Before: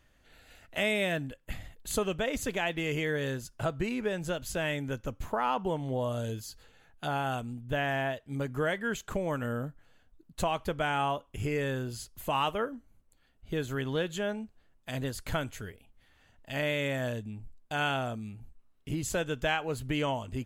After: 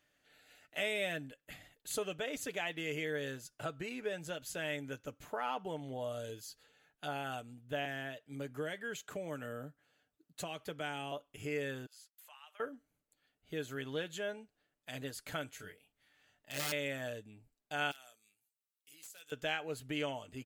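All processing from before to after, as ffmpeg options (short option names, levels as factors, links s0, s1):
-filter_complex "[0:a]asettb=1/sr,asplit=3[s0][s1][s2];[s0]atrim=end=7.854[s3];[s1]atrim=start=7.85:end=11.12,asetpts=PTS-STARTPTS,afade=t=in:d=0.004:c=qsin,afade=t=out:st=3.266:d=0.004:c=qsin,highpass=51,acrossover=split=420|3000[s4][s5][s6];[s5]acompressor=threshold=0.0158:ratio=2:attack=3.2:release=140:knee=2.83:detection=peak[s7];[s4][s7][s6]amix=inputs=3:normalize=0[s8];[s2]atrim=start=11.116[s9];[s3][s8]acrossfade=d=0.004:c1=hsin:c2=qsin[s10];[s10][s9]acrossfade=d=0.004:c1=qsin:c2=hsin,asettb=1/sr,asplit=3[s11][s12][s13];[s11]atrim=end=11.864[s14];[s12]atrim=start=11.86:end=12.6,asetpts=PTS-STARTPTS,afade=t=in:d=0.004:c=qsin,afade=t=out:st=0.736:d=0.004:c=qsin,highpass=f=900:w=0.5412,highpass=f=900:w=1.3066,agate=range=0.0224:threshold=0.00398:ratio=3:release=100:detection=peak,acompressor=threshold=0.002:ratio=2.5:attack=3.2:release=140:knee=1:detection=peak[s15];[s13]atrim=start=12.596[s16];[s14][s15]acrossfade=d=0.004:c1=hsin:c2=qsin[s17];[s17][s16]acrossfade=d=0.004:c1=qsin:c2=hsin,asettb=1/sr,asplit=3[s18][s19][s20];[s18]atrim=end=15.574[s21];[s19]atrim=start=15.57:end=16.72,asetpts=PTS-STARTPTS,afade=t=in:d=0.004:c=qsin,afade=t=out:st=1.146:d=0.004:c=qsin,equalizer=f=390:t=o:w=1.7:g=-2.5,aeval=exprs='(mod(23.7*val(0)+1,2)-1)/23.7':c=same,asplit=2[s22][s23];[s23]adelay=21,volume=0.668[s24];[s22][s24]amix=inputs=2:normalize=0,atrim=end_sample=50715[s25];[s20]atrim=start=16.716[s26];[s21][s25]acrossfade=d=0.004:c1=hsin:c2=qsin[s27];[s27][s26]acrossfade=d=0.004:c1=qsin:c2=hsin,asettb=1/sr,asplit=3[s28][s29][s30];[s28]atrim=end=17.914[s31];[s29]atrim=start=17.91:end=19.32,asetpts=PTS-STARTPTS,afade=t=in:d=0.004:c=qsin,afade=t=out:st=1.406:d=0.004:c=qsin,aderivative,acompressor=threshold=0.00708:ratio=8:attack=3.2:release=140:knee=1:detection=peak,aeval=exprs='(mod(75*val(0)+1,2)-1)/75':c=same[s32];[s30]atrim=start=19.316[s33];[s31][s32]acrossfade=d=0.004:c1=hsin:c2=qsin[s34];[s34][s33]acrossfade=d=0.004:c1=qsin:c2=hsin,highpass=f=380:p=1,equalizer=f=1000:t=o:w=0.48:g=-6.5,aecho=1:1:6.8:0.4,volume=0.531"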